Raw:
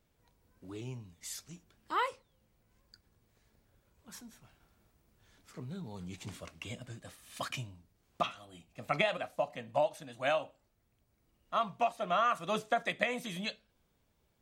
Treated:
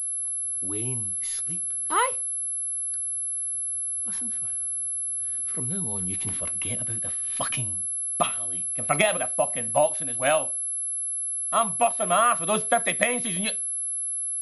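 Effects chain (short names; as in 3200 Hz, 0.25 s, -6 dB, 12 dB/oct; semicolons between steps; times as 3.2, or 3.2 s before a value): pulse-width modulation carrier 11000 Hz; gain +8.5 dB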